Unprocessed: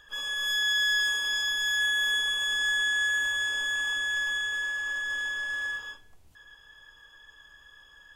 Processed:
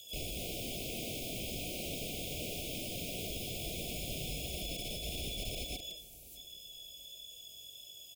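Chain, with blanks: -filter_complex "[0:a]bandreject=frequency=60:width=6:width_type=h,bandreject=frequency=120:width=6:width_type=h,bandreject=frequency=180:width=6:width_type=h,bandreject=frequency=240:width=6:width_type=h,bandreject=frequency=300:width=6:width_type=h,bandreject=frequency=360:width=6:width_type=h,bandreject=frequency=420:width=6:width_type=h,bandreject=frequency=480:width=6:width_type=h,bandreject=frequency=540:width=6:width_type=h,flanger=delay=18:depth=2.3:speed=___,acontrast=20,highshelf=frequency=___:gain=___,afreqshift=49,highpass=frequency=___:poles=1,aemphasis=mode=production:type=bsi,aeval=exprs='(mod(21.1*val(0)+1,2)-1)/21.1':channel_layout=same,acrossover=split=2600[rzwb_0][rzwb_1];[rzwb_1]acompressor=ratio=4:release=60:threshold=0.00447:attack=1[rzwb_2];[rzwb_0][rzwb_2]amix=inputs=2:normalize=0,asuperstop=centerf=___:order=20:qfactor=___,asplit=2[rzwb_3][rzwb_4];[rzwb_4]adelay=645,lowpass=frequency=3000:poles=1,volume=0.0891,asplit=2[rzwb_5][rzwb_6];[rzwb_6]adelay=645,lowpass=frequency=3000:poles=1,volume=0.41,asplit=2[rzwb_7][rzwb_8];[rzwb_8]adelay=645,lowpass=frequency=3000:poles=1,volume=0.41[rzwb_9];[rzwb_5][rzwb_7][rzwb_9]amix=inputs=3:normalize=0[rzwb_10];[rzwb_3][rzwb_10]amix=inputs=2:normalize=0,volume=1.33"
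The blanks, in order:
1.5, 7300, 5, 67, 1300, 0.82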